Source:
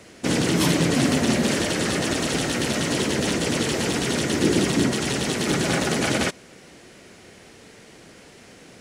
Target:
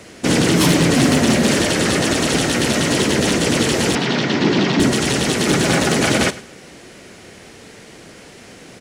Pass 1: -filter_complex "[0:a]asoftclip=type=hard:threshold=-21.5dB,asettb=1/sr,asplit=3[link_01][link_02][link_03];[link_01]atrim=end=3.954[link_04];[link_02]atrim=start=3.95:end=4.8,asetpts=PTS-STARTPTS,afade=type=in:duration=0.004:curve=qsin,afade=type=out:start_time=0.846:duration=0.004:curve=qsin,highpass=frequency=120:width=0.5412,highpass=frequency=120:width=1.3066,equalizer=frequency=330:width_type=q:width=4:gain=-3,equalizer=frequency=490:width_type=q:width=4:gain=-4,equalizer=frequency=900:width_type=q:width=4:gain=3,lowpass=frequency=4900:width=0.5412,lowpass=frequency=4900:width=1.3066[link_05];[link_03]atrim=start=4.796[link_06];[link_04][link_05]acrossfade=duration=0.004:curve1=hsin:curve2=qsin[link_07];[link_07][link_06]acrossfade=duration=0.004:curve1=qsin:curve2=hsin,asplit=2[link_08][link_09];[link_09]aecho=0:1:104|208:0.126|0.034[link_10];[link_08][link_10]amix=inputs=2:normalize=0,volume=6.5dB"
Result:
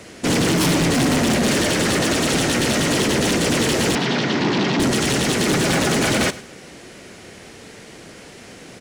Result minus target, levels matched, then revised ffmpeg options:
hard clipping: distortion +12 dB
-filter_complex "[0:a]asoftclip=type=hard:threshold=-14.5dB,asettb=1/sr,asplit=3[link_01][link_02][link_03];[link_01]atrim=end=3.954[link_04];[link_02]atrim=start=3.95:end=4.8,asetpts=PTS-STARTPTS,afade=type=in:duration=0.004:curve=qsin,afade=type=out:start_time=0.846:duration=0.004:curve=qsin,highpass=frequency=120:width=0.5412,highpass=frequency=120:width=1.3066,equalizer=frequency=330:width_type=q:width=4:gain=-3,equalizer=frequency=490:width_type=q:width=4:gain=-4,equalizer=frequency=900:width_type=q:width=4:gain=3,lowpass=frequency=4900:width=0.5412,lowpass=frequency=4900:width=1.3066[link_05];[link_03]atrim=start=4.796[link_06];[link_04][link_05]acrossfade=duration=0.004:curve1=hsin:curve2=qsin[link_07];[link_07][link_06]acrossfade=duration=0.004:curve1=qsin:curve2=hsin,asplit=2[link_08][link_09];[link_09]aecho=0:1:104|208:0.126|0.034[link_10];[link_08][link_10]amix=inputs=2:normalize=0,volume=6.5dB"

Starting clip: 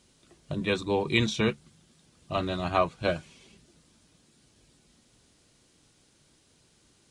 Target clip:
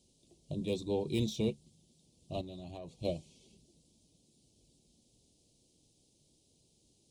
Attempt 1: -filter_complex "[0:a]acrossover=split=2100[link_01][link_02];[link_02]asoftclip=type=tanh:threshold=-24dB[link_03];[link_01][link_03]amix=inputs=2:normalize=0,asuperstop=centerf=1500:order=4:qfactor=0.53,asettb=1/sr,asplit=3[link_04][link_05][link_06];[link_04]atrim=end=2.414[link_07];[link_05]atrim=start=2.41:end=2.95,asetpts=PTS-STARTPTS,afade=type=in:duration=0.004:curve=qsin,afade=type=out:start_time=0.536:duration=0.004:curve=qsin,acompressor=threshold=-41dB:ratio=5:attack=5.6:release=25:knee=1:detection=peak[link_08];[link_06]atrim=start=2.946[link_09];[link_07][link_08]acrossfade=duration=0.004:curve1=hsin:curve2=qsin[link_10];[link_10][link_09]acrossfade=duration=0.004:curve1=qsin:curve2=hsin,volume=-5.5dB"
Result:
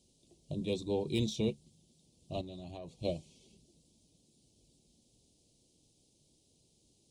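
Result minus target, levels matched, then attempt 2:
soft clipping: distortion −5 dB
-filter_complex "[0:a]acrossover=split=2100[link_01][link_02];[link_02]asoftclip=type=tanh:threshold=-30.5dB[link_03];[link_01][link_03]amix=inputs=2:normalize=0,asuperstop=centerf=1500:order=4:qfactor=0.53,asettb=1/sr,asplit=3[link_04][link_05][link_06];[link_04]atrim=end=2.414[link_07];[link_05]atrim=start=2.41:end=2.95,asetpts=PTS-STARTPTS,afade=type=in:duration=0.004:curve=qsin,afade=type=out:start_time=0.536:duration=0.004:curve=qsin,acompressor=threshold=-41dB:ratio=5:attack=5.6:release=25:knee=1:detection=peak[link_08];[link_06]atrim=start=2.946[link_09];[link_07][link_08]acrossfade=duration=0.004:curve1=hsin:curve2=qsin[link_10];[link_10][link_09]acrossfade=duration=0.004:curve1=qsin:curve2=hsin,volume=-5.5dB"

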